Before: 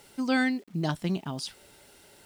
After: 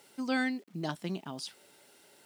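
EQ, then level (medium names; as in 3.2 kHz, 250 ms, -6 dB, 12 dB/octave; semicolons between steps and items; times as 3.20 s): high-pass 190 Hz 12 dB/octave; -4.5 dB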